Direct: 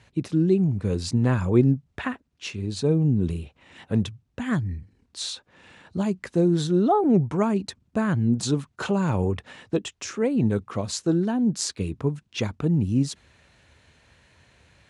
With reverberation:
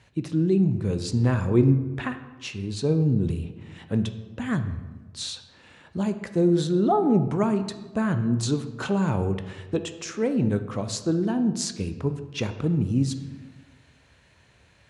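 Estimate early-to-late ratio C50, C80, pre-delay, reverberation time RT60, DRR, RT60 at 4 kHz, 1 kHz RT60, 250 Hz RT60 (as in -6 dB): 11.0 dB, 13.0 dB, 12 ms, 1.3 s, 9.0 dB, 0.80 s, 1.2 s, 1.5 s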